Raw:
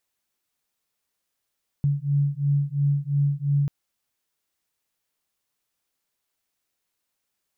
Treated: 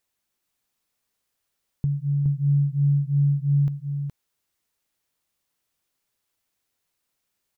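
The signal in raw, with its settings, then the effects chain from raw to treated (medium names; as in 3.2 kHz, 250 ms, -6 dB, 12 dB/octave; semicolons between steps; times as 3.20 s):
beating tones 141 Hz, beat 2.9 Hz, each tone -23 dBFS 1.84 s
bass shelf 220 Hz +3.5 dB; compression, threshold -21 dBFS; on a send: delay 418 ms -5 dB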